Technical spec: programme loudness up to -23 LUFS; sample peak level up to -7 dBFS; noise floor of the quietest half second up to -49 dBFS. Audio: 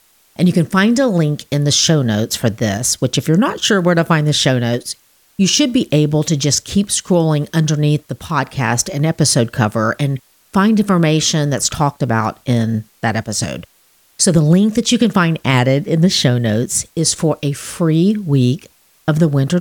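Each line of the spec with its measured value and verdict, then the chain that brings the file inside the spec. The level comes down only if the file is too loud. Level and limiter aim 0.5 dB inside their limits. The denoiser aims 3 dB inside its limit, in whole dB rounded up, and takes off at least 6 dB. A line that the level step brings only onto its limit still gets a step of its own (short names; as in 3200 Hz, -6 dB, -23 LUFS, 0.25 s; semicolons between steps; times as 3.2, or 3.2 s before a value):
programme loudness -15.0 LUFS: fail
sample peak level -2.0 dBFS: fail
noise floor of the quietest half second -54 dBFS: OK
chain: gain -8.5 dB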